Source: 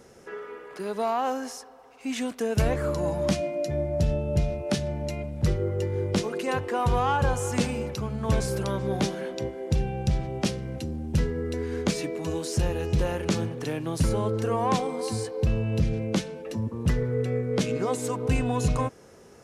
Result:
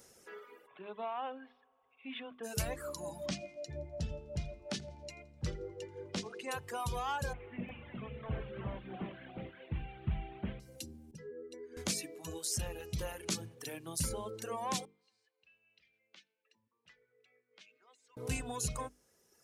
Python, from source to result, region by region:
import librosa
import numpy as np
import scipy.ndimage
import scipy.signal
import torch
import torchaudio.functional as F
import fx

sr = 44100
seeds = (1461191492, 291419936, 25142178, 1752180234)

y = fx.dmg_tone(x, sr, hz=1100.0, level_db=-55.0, at=(0.66, 2.43), fade=0.02)
y = fx.cheby_ripple(y, sr, hz=3600.0, ripple_db=3, at=(0.66, 2.43), fade=0.02)
y = fx.chain(y, sr, fx.air_absorb(metres=110.0),
    fx.echo_feedback(ms=84, feedback_pct=48, wet_db=-13), at=(3.26, 6.51))
y = fx.chain(y, sr, fx.delta_mod(bps=16000, step_db=-40.0),
    fx.echo_single(ms=358, db=-4.0), at=(7.33, 10.6))
y = fx.chain(y, sr, fx.spec_expand(power=1.5),
    fx.highpass(hz=250.0, slope=12), at=(11.11, 11.77))
y = fx.chain(y, sr, fx.ladder_lowpass(hz=3200.0, resonance_pct=25),
    fx.differentiator(), at=(14.85, 18.17))
y = scipy.signal.lfilter([1.0, -0.8], [1.0], y)
y = fx.dereverb_blind(y, sr, rt60_s=2.0)
y = fx.hum_notches(y, sr, base_hz=50, count=9)
y = F.gain(torch.from_numpy(y), 2.0).numpy()